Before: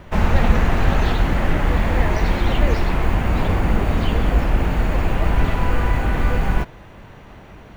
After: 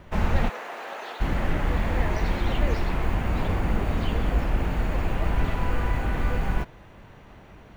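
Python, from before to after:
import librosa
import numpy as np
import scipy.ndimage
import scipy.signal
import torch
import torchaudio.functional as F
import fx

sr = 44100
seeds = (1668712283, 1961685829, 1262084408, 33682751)

y = fx.ladder_highpass(x, sr, hz=390.0, resonance_pct=20, at=(0.48, 1.2), fade=0.02)
y = y * 10.0 ** (-6.5 / 20.0)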